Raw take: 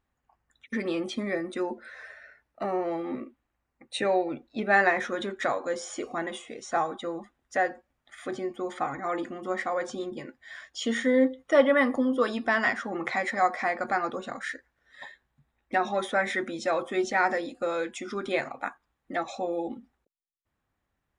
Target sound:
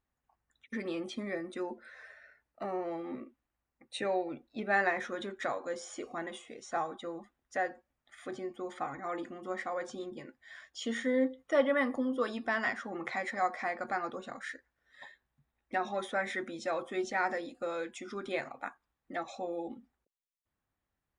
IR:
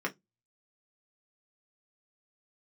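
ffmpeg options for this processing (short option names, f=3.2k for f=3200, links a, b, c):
-af "volume=-7dB"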